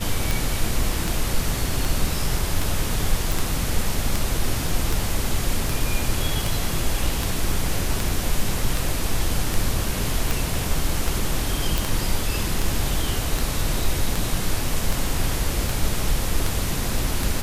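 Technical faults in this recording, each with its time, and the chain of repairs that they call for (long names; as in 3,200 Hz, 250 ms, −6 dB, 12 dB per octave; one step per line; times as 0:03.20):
scratch tick 78 rpm
0:03.32: click
0:11.78: click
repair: click removal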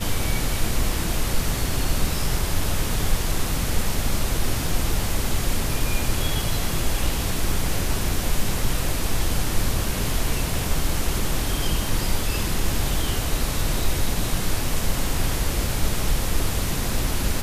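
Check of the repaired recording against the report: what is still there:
none of them is left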